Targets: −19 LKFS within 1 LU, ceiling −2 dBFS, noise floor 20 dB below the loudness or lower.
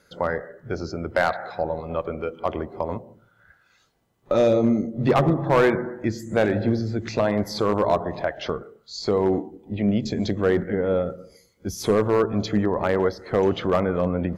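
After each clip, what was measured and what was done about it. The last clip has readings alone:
share of clipped samples 0.5%; peaks flattened at −11.5 dBFS; integrated loudness −23.5 LKFS; sample peak −11.5 dBFS; target loudness −19.0 LKFS
→ clipped peaks rebuilt −11.5 dBFS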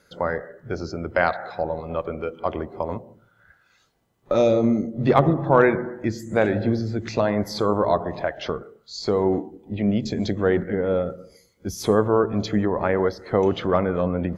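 share of clipped samples 0.0%; integrated loudness −23.0 LKFS; sample peak −2.5 dBFS; target loudness −19.0 LKFS
→ level +4 dB
brickwall limiter −2 dBFS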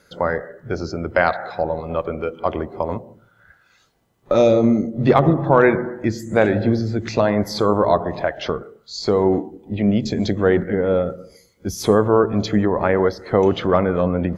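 integrated loudness −19.5 LKFS; sample peak −2.0 dBFS; background noise floor −58 dBFS

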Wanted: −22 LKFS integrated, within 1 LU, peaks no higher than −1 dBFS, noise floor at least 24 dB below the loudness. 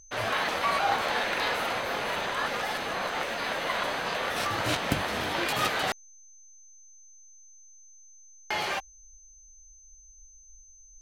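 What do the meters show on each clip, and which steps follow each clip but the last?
interfering tone 6,200 Hz; level of the tone −52 dBFS; integrated loudness −29.0 LKFS; sample peak −12.0 dBFS; target loudness −22.0 LKFS
→ notch filter 6,200 Hz, Q 30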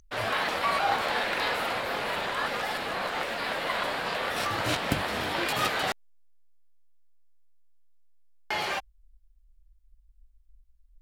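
interfering tone none found; integrated loudness −29.0 LKFS; sample peak −12.5 dBFS; target loudness −22.0 LKFS
→ level +7 dB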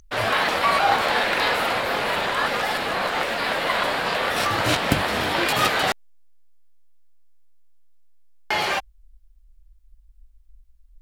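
integrated loudness −22.0 LKFS; sample peak −5.5 dBFS; background noise floor −54 dBFS

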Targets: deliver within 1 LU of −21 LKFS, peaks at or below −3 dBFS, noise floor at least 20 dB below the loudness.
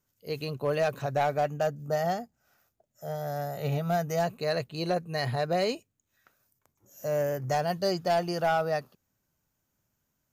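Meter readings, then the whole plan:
share of clipped samples 0.6%; peaks flattened at −19.5 dBFS; integrated loudness −30.0 LKFS; sample peak −19.5 dBFS; target loudness −21.0 LKFS
→ clipped peaks rebuilt −19.5 dBFS
level +9 dB

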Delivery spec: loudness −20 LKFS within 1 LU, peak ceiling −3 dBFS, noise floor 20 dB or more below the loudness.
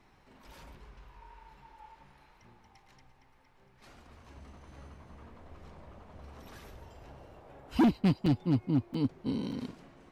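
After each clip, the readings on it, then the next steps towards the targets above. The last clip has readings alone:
share of clipped samples 0.8%; peaks flattened at −20.0 dBFS; number of dropouts 3; longest dropout 4.2 ms; integrated loudness −30.5 LKFS; sample peak −20.0 dBFS; target loudness −20.0 LKFS
→ clipped peaks rebuilt −20 dBFS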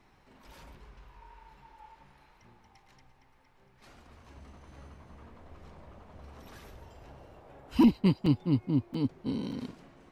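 share of clipped samples 0.0%; number of dropouts 3; longest dropout 4.2 ms
→ repair the gap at 0:08.26/0:08.94/0:09.52, 4.2 ms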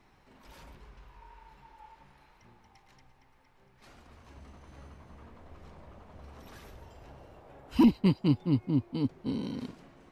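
number of dropouts 0; integrated loudness −28.5 LKFS; sample peak −13.0 dBFS; target loudness −20.0 LKFS
→ level +8.5 dB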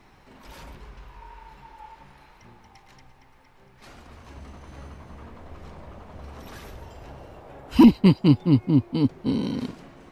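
integrated loudness −20.0 LKFS; sample peak −4.5 dBFS; background noise floor −55 dBFS

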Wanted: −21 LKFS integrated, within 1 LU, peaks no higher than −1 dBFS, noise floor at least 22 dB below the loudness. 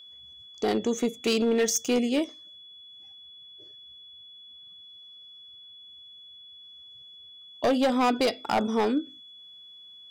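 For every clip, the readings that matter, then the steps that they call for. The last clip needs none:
share of clipped samples 1.0%; peaks flattened at −18.5 dBFS; interfering tone 3,400 Hz; level of the tone −46 dBFS; integrated loudness −26.0 LKFS; sample peak −18.5 dBFS; target loudness −21.0 LKFS
→ clipped peaks rebuilt −18.5 dBFS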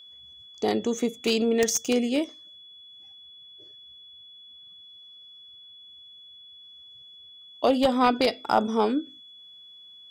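share of clipped samples 0.0%; interfering tone 3,400 Hz; level of the tone −46 dBFS
→ notch filter 3,400 Hz, Q 30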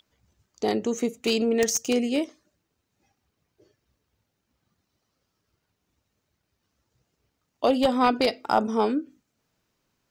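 interfering tone none found; integrated loudness −24.5 LKFS; sample peak −9.5 dBFS; target loudness −21.0 LKFS
→ level +3.5 dB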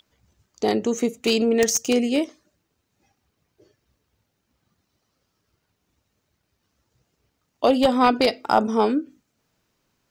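integrated loudness −21.5 LKFS; sample peak −5.5 dBFS; background noise floor −75 dBFS

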